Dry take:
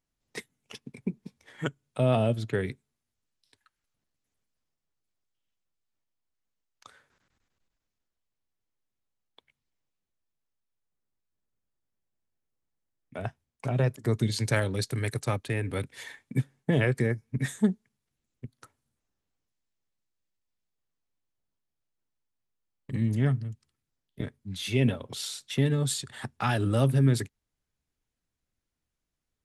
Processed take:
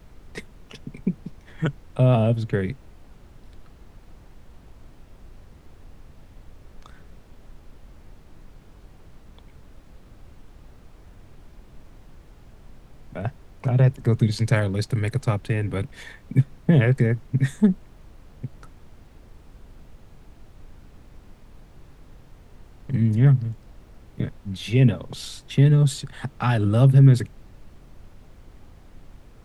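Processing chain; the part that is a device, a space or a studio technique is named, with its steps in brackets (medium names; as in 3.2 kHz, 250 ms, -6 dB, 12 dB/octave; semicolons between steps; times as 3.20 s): car interior (peaking EQ 150 Hz +8 dB 0.84 oct; treble shelf 4.9 kHz -7.5 dB; brown noise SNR 19 dB); trim +3 dB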